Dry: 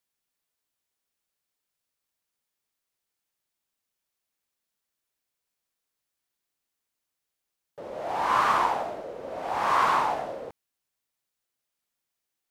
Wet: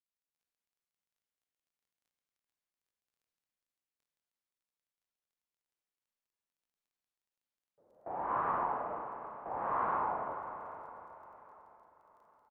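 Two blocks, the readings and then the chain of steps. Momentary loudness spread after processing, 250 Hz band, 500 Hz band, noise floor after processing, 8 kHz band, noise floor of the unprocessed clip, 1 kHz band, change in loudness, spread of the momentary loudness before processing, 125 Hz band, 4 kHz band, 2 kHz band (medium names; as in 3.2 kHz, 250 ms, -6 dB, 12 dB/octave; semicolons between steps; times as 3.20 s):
19 LU, -7.5 dB, -9.0 dB, under -85 dBFS, under -30 dB, -85 dBFS, -9.5 dB, -10.5 dB, 18 LU, -7.0 dB, under -30 dB, -14.0 dB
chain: local Wiener filter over 9 samples; gate with hold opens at -25 dBFS; Bessel low-pass 1.1 kHz, order 4; crackle 20 per s -55 dBFS; feedback delay 798 ms, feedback 45%, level -22.5 dB; Schroeder reverb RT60 3.9 s, combs from 32 ms, DRR 4 dB; endings held to a fixed fall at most 110 dB/s; trim -8 dB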